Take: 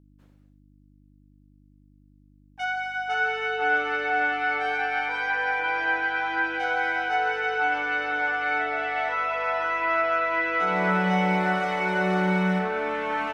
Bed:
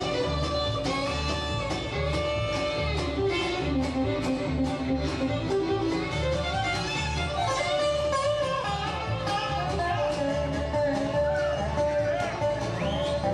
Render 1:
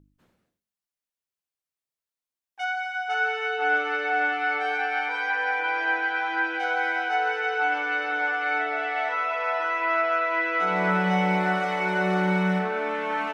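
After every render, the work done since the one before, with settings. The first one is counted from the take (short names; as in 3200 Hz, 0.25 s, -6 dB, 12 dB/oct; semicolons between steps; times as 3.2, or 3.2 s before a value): de-hum 50 Hz, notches 11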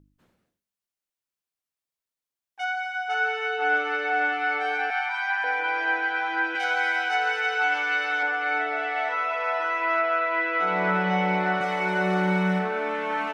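4.9–5.44 steep high-pass 630 Hz 96 dB/oct; 6.55–8.23 tilt +3 dB/oct; 9.99–11.61 BPF 170–4800 Hz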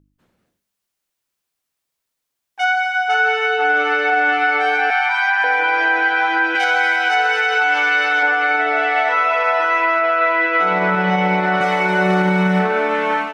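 AGC gain up to 11.5 dB; limiter -8 dBFS, peak gain reduction 5.5 dB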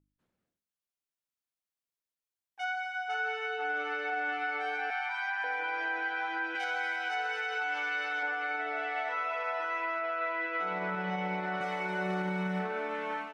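gain -17 dB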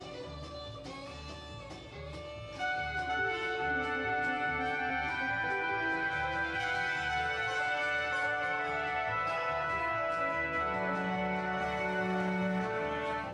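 add bed -16 dB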